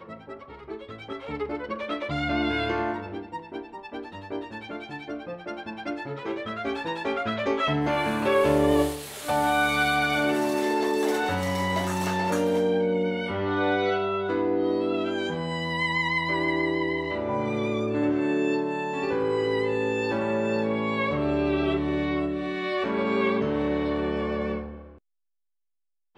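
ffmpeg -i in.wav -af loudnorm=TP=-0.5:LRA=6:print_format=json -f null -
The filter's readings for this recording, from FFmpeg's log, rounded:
"input_i" : "-26.4",
"input_tp" : "-10.6",
"input_lra" : "6.6",
"input_thresh" : "-36.8",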